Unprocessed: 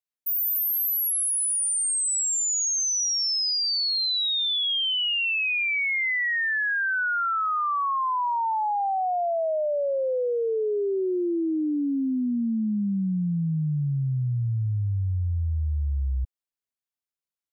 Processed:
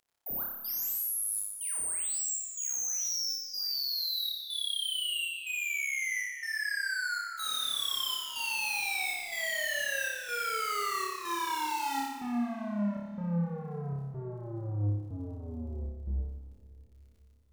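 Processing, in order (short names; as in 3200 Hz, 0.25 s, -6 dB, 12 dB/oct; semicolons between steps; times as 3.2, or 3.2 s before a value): band shelf 590 Hz +9.5 dB 2.4 oct; in parallel at +2 dB: limiter -20.5 dBFS, peak gain reduction 8 dB; on the sum: wrapped overs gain 11.5 dB; step gate "xxxx..xxx" 140 bpm -24 dB; soft clip -27.5 dBFS, distortion -9 dB; crackle 21/s -49 dBFS; flutter echo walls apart 5 m, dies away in 0.87 s; on a send at -14 dB: reverb RT60 3.8 s, pre-delay 45 ms; on the sum: gain -9 dB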